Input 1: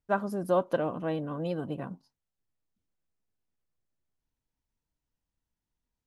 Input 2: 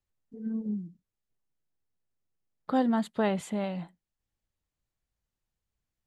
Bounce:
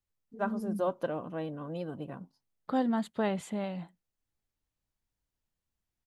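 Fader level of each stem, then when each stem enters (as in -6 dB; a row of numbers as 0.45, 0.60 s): -5.0, -3.0 dB; 0.30, 0.00 s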